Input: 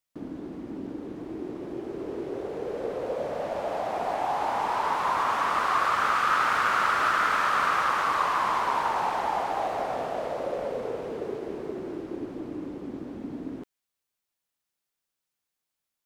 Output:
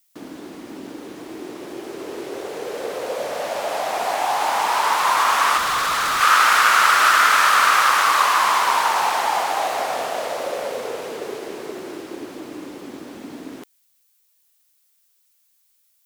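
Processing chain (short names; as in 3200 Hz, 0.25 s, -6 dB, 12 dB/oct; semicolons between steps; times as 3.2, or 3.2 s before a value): tilt +4 dB/oct; 5.57–6.21 hard clip -26.5 dBFS, distortion -14 dB; gain +7.5 dB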